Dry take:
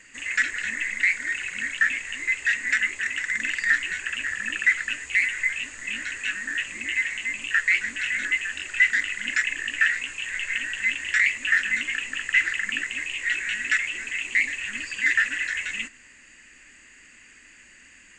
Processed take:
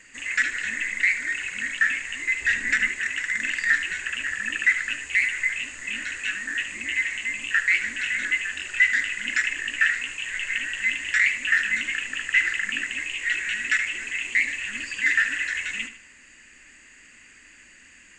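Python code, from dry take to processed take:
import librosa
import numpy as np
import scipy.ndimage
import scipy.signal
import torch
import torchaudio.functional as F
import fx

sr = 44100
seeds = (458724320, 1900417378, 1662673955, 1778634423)

p1 = fx.low_shelf(x, sr, hz=420.0, db=10.0, at=(2.41, 2.89))
y = p1 + fx.echo_feedback(p1, sr, ms=75, feedback_pct=38, wet_db=-11.5, dry=0)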